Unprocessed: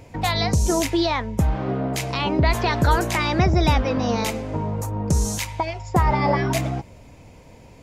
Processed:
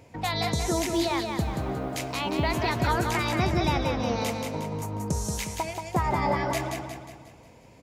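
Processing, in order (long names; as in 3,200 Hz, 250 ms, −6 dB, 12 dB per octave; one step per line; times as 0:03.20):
high-pass filter 100 Hz 6 dB per octave
0:00.73–0:02.91: log-companded quantiser 8 bits
repeating echo 180 ms, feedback 47%, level −5 dB
level −6 dB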